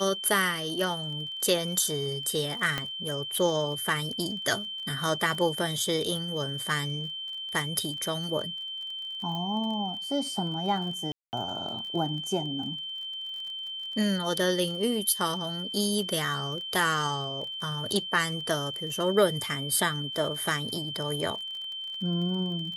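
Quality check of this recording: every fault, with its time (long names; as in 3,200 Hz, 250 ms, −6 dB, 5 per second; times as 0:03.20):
surface crackle 29 per second −37 dBFS
whistle 3,100 Hz −34 dBFS
0:02.78: click −14 dBFS
0:09.35: click −23 dBFS
0:11.12–0:11.33: drop-out 209 ms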